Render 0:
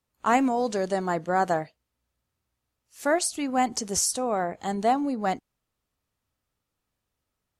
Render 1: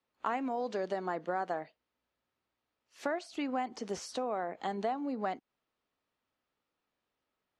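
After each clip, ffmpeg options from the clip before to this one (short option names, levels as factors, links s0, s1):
-filter_complex "[0:a]acrossover=split=3300[s0][s1];[s1]acompressor=threshold=0.0251:ratio=4:attack=1:release=60[s2];[s0][s2]amix=inputs=2:normalize=0,acrossover=split=210 4800:gain=0.158 1 0.0891[s3][s4][s5];[s3][s4][s5]amix=inputs=3:normalize=0,acompressor=threshold=0.0251:ratio=4"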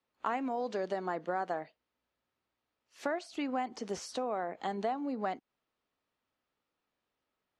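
-af anull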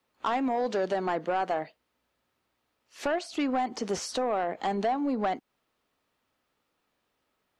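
-af "asoftclip=type=tanh:threshold=0.0376,volume=2.66"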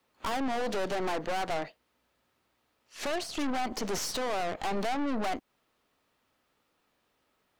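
-af "aeval=exprs='(tanh(70.8*val(0)+0.75)-tanh(0.75))/70.8':c=same,volume=2.37"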